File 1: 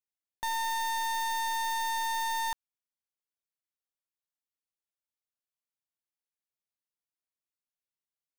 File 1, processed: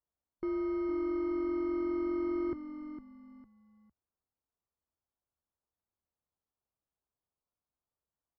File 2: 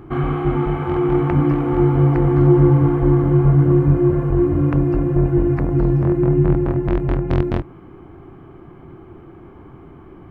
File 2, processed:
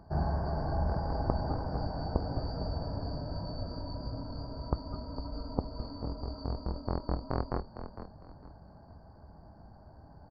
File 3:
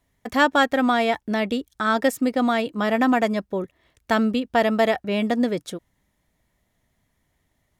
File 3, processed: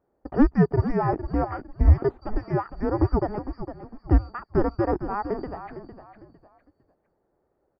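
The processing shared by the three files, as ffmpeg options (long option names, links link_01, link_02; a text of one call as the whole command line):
ffmpeg -i in.wav -filter_complex "[0:a]afftfilt=real='real(if(lt(b,272),68*(eq(floor(b/68),0)*1+eq(floor(b/68),1)*2+eq(floor(b/68),2)*3+eq(floor(b/68),3)*0)+mod(b,68),b),0)':imag='imag(if(lt(b,272),68*(eq(floor(b/68),0)*1+eq(floor(b/68),1)*2+eq(floor(b/68),2)*3+eq(floor(b/68),3)*0)+mod(b,68),b),0)':win_size=2048:overlap=0.75,lowpass=frequency=1200:width=0.5412,lowpass=frequency=1200:width=1.3066,equalizer=frequency=64:width_type=o:width=1.2:gain=11.5,acontrast=73,asoftclip=type=hard:threshold=-7.5dB,asplit=2[link_01][link_02];[link_02]asplit=3[link_03][link_04][link_05];[link_03]adelay=455,afreqshift=-45,volume=-10.5dB[link_06];[link_04]adelay=910,afreqshift=-90,volume=-20.7dB[link_07];[link_05]adelay=1365,afreqshift=-135,volume=-30.8dB[link_08];[link_06][link_07][link_08]amix=inputs=3:normalize=0[link_09];[link_01][link_09]amix=inputs=2:normalize=0" out.wav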